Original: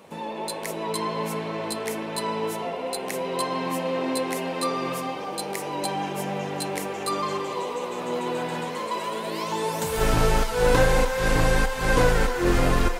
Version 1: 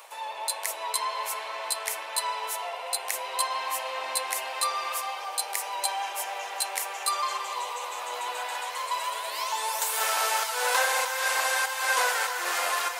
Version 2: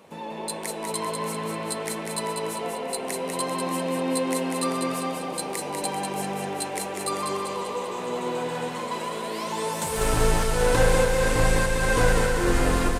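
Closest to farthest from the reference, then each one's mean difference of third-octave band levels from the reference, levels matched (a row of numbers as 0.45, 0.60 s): 2, 1; 3.0, 12.5 dB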